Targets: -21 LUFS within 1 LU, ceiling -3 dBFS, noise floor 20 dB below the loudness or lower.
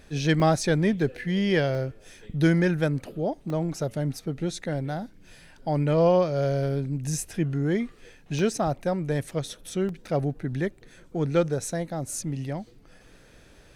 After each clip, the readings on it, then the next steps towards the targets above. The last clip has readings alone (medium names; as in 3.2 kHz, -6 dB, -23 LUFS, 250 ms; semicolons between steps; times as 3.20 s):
dropouts 5; longest dropout 1.5 ms; loudness -27.0 LUFS; peak level -11.0 dBFS; loudness target -21.0 LUFS
-> interpolate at 0.40/1.75/3.50/8.39/9.89 s, 1.5 ms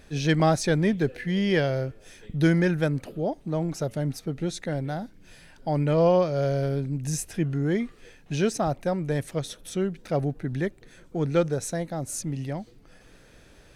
dropouts 0; loudness -27.0 LUFS; peak level -11.0 dBFS; loudness target -21.0 LUFS
-> trim +6 dB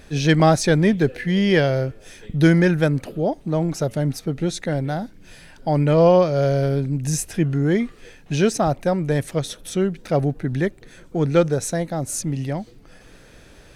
loudness -20.5 LUFS; peak level -5.0 dBFS; noise floor -48 dBFS